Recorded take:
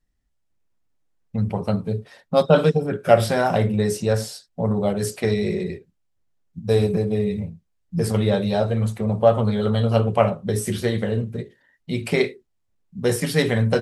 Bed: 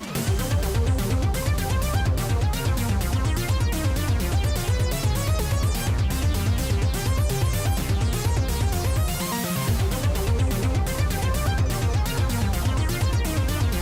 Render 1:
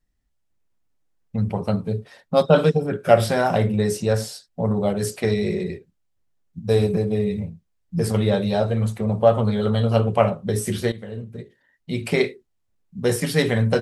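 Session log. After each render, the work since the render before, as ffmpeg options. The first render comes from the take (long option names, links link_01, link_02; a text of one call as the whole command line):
ffmpeg -i in.wav -filter_complex "[0:a]asplit=2[link_01][link_02];[link_01]atrim=end=10.92,asetpts=PTS-STARTPTS,afade=type=out:start_time=10.916:duration=0.004:curve=hsin:silence=0.16788[link_03];[link_02]atrim=start=10.92,asetpts=PTS-STARTPTS,afade=type=in:duration=1.14:silence=0.16788[link_04];[link_03][link_04]concat=n=2:v=0:a=1" out.wav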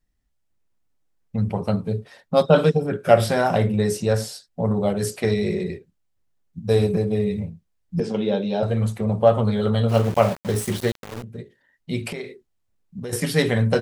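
ffmpeg -i in.wav -filter_complex "[0:a]asettb=1/sr,asplit=3[link_01][link_02][link_03];[link_01]atrim=end=8.004[link_04];[link_02]atrim=start=8:end=8.63,asetpts=PTS-STARTPTS,afade=type=in:duration=0.004:curve=qsin,afade=type=out:start_time=0.626:duration=0.004:curve=qsin,highpass=frequency=180:width=0.5412,highpass=frequency=180:width=1.3066,equalizer=frequency=660:width_type=q:width=4:gain=-4,equalizer=frequency=1200:width_type=q:width=4:gain=-10,equalizer=frequency=1900:width_type=q:width=4:gain=-9,equalizer=frequency=4400:width_type=q:width=4:gain=-8,lowpass=frequency=5500:width=0.5412,lowpass=frequency=5500:width=1.3066[link_05];[link_03]atrim=start=8.626[link_06];[link_04][link_05]acrossfade=duration=0.004:curve1=hsin:curve2=qsin[link_07];[link_07][link_06]acrossfade=duration=0.004:curve1=qsin:curve2=hsin,asplit=3[link_08][link_09][link_10];[link_08]afade=type=out:start_time=9.88:duration=0.02[link_11];[link_09]aeval=exprs='val(0)*gte(abs(val(0)),0.0355)':channel_layout=same,afade=type=in:start_time=9.88:duration=0.02,afade=type=out:start_time=11.22:duration=0.02[link_12];[link_10]afade=type=in:start_time=11.22:duration=0.02[link_13];[link_11][link_12][link_13]amix=inputs=3:normalize=0,asettb=1/sr,asplit=3[link_14][link_15][link_16];[link_14]atrim=end=12.094[link_17];[link_15]atrim=start=12.09:end=13.13,asetpts=PTS-STARTPTS,afade=type=in:duration=0.004:curve=qsin,afade=type=out:start_time=1.036:duration=0.004:curve=qsin,acompressor=threshold=-28dB:ratio=8:attack=3.2:release=140:knee=1:detection=peak[link_18];[link_16]atrim=start=13.126[link_19];[link_17][link_18]acrossfade=duration=0.004:curve1=hsin:curve2=qsin[link_20];[link_20][link_19]acrossfade=duration=0.004:curve1=qsin:curve2=hsin" out.wav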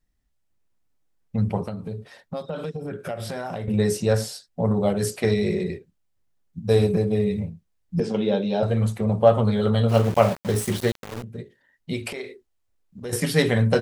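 ffmpeg -i in.wav -filter_complex "[0:a]asettb=1/sr,asplit=3[link_01][link_02][link_03];[link_01]atrim=end=1.654[link_04];[link_02]atrim=start=1.65:end=3.68,asetpts=PTS-STARTPTS,afade=type=in:duration=0.004:curve=qsin,afade=type=out:start_time=2.026:duration=0.004:curve=qsin,acompressor=threshold=-28dB:ratio=6:attack=3.2:release=140:knee=1:detection=peak[link_05];[link_03]atrim=start=3.676[link_06];[link_04][link_05]acrossfade=duration=0.004:curve1=hsin:curve2=qsin[link_07];[link_07][link_06]acrossfade=duration=0.004:curve1=qsin:curve2=hsin,asettb=1/sr,asplit=3[link_08][link_09][link_10];[link_08]atrim=end=11.934[link_11];[link_09]atrim=start=11.93:end=13.06,asetpts=PTS-STARTPTS,afade=type=in:duration=0.004:curve=qsin,afade=type=out:start_time=1.126:duration=0.004:curve=qsin,equalizer=frequency=160:width_type=o:width=0.77:gain=-13[link_12];[link_10]atrim=start=13.056[link_13];[link_11][link_12]acrossfade=duration=0.004:curve1=hsin:curve2=qsin[link_14];[link_14][link_13]acrossfade=duration=0.004:curve1=qsin:curve2=hsin" out.wav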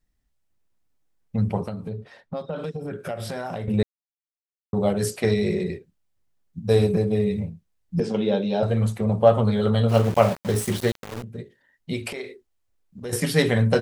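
ffmpeg -i in.wav -filter_complex "[0:a]asettb=1/sr,asplit=3[link_01][link_02][link_03];[link_01]atrim=end=1.894[link_04];[link_02]atrim=start=1.89:end=2.64,asetpts=PTS-STARTPTS,afade=type=in:duration=0.004:curve=qsin,afade=type=out:start_time=0.746:duration=0.004:curve=qsin,aemphasis=mode=reproduction:type=50fm[link_05];[link_03]atrim=start=2.636[link_06];[link_04][link_05]acrossfade=duration=0.004:curve1=hsin:curve2=qsin[link_07];[link_07][link_06]acrossfade=duration=0.004:curve1=qsin:curve2=hsin,asplit=3[link_08][link_09][link_10];[link_08]atrim=end=3.83,asetpts=PTS-STARTPTS,afade=type=out:start_time=3.826:duration=0.004:curve=hsin[link_11];[link_09]atrim=start=3.83:end=4.73,asetpts=PTS-STARTPTS,volume=0[link_12];[link_10]atrim=start=4.73,asetpts=PTS-STARTPTS,afade=type=in:duration=0.004:curve=hsin[link_13];[link_11][link_12][link_13]concat=n=3:v=0:a=1" out.wav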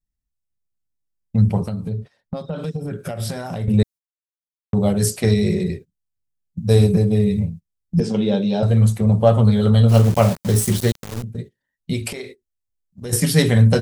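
ffmpeg -i in.wav -af "agate=range=-17dB:threshold=-39dB:ratio=16:detection=peak,bass=frequency=250:gain=9,treble=frequency=4000:gain=9" out.wav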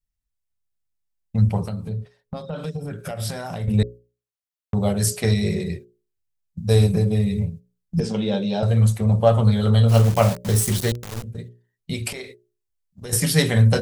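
ffmpeg -i in.wav -af "equalizer=frequency=260:width_type=o:width=1.6:gain=-5,bandreject=frequency=60:width_type=h:width=6,bandreject=frequency=120:width_type=h:width=6,bandreject=frequency=180:width_type=h:width=6,bandreject=frequency=240:width_type=h:width=6,bandreject=frequency=300:width_type=h:width=6,bandreject=frequency=360:width_type=h:width=6,bandreject=frequency=420:width_type=h:width=6,bandreject=frequency=480:width_type=h:width=6,bandreject=frequency=540:width_type=h:width=6,bandreject=frequency=600:width_type=h:width=6" out.wav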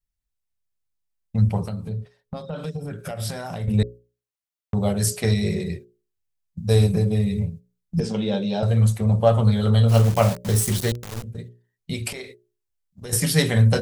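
ffmpeg -i in.wav -af "volume=-1dB" out.wav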